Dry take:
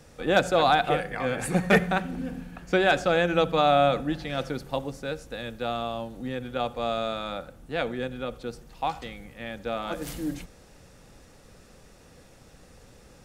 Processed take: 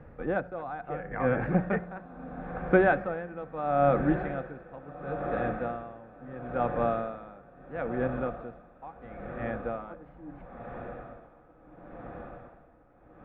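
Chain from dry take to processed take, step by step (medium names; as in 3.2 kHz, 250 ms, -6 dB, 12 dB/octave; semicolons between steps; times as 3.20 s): low-pass 1.8 kHz 24 dB/octave; bass shelf 180 Hz +3.5 dB; on a send: echo that smears into a reverb 1454 ms, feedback 66%, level -12 dB; on the sum: logarithmic tremolo 0.74 Hz, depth 19 dB; trim +2 dB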